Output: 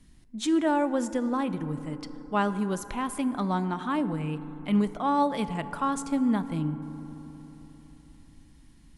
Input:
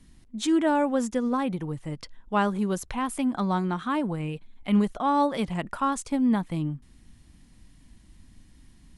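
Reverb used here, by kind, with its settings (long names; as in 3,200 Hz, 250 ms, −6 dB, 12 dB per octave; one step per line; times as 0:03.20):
feedback delay network reverb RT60 4 s, high-frequency decay 0.3×, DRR 12 dB
level −2 dB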